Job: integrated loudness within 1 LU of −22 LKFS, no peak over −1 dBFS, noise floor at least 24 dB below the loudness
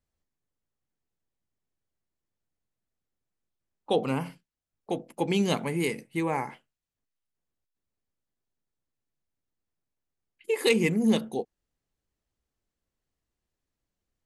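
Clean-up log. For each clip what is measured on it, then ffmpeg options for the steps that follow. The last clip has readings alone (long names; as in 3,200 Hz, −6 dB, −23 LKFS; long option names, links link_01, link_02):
integrated loudness −28.0 LKFS; sample peak −9.0 dBFS; target loudness −22.0 LKFS
→ -af "volume=6dB"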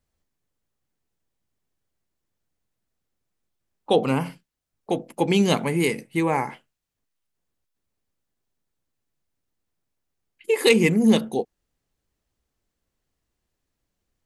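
integrated loudness −22.0 LKFS; sample peak −3.0 dBFS; background noise floor −81 dBFS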